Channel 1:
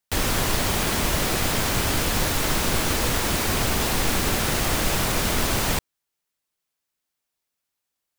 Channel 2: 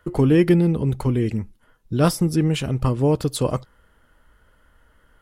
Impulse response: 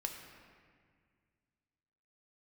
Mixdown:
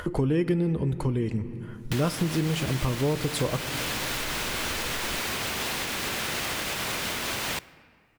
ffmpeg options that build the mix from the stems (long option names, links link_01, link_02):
-filter_complex "[0:a]highpass=frequency=160:poles=1,equalizer=frequency=2600:width_type=o:width=2:gain=6.5,alimiter=limit=-18.5dB:level=0:latency=1:release=461,adelay=1800,volume=-2dB,asplit=2[link_01][link_02];[link_02]volume=-12.5dB[link_03];[1:a]lowpass=11000,acompressor=mode=upward:threshold=-26dB:ratio=2.5,volume=-1.5dB,asplit=2[link_04][link_05];[link_05]volume=-6dB[link_06];[2:a]atrim=start_sample=2205[link_07];[link_03][link_06]amix=inputs=2:normalize=0[link_08];[link_08][link_07]afir=irnorm=-1:irlink=0[link_09];[link_01][link_04][link_09]amix=inputs=3:normalize=0,acompressor=threshold=-26dB:ratio=2.5"